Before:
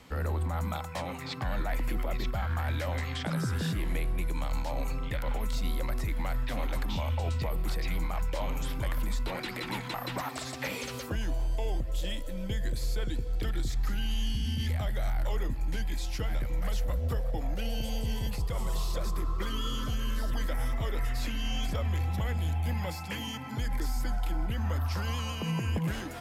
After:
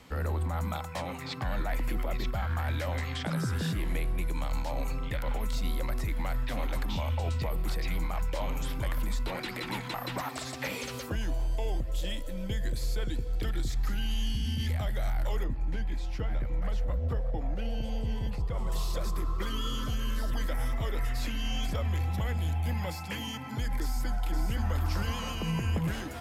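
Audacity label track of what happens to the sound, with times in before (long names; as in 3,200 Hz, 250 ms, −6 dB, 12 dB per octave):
15.440000	18.720000	low-pass filter 1,700 Hz 6 dB per octave
23.800000	24.820000	delay throw 520 ms, feedback 50%, level −5 dB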